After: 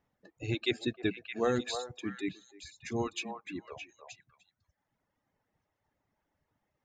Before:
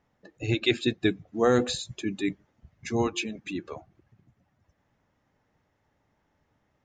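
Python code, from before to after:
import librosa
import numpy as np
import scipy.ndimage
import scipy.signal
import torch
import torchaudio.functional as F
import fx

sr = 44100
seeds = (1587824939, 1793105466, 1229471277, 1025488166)

y = fx.dereverb_blind(x, sr, rt60_s=1.5)
y = fx.echo_stepped(y, sr, ms=309, hz=800.0, octaves=1.4, feedback_pct=70, wet_db=-3.0)
y = y * 10.0 ** (-6.5 / 20.0)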